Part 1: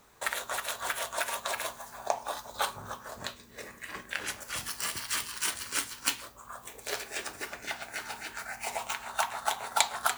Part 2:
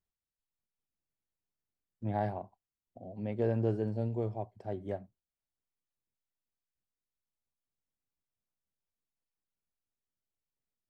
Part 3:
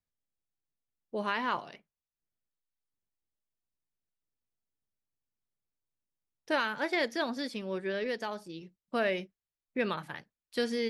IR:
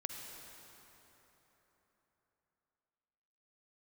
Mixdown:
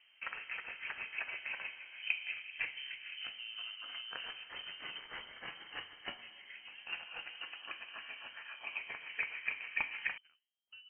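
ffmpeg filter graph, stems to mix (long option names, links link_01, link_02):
-filter_complex "[0:a]volume=-3dB,asplit=2[link_01][link_02];[link_02]volume=-4dB[link_03];[1:a]volume=-4.5dB[link_04];[2:a]flanger=delay=2.8:depth=9.1:regen=-89:speed=1.6:shape=triangular,adelay=150,volume=-15.5dB[link_05];[link_04][link_05]amix=inputs=2:normalize=0,acompressor=threshold=-48dB:ratio=2.5,volume=0dB[link_06];[3:a]atrim=start_sample=2205[link_07];[link_03][link_07]afir=irnorm=-1:irlink=0[link_08];[link_01][link_06][link_08]amix=inputs=3:normalize=0,equalizer=frequency=2200:width_type=o:width=2.9:gain=-12.5,lowpass=frequency=2700:width_type=q:width=0.5098,lowpass=frequency=2700:width_type=q:width=0.6013,lowpass=frequency=2700:width_type=q:width=0.9,lowpass=frequency=2700:width_type=q:width=2.563,afreqshift=-3200"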